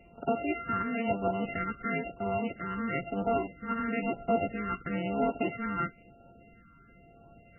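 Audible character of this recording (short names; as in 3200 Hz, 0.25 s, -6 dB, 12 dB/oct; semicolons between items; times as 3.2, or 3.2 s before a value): a buzz of ramps at a fixed pitch in blocks of 64 samples; phasing stages 6, 1 Hz, lowest notch 640–2200 Hz; MP3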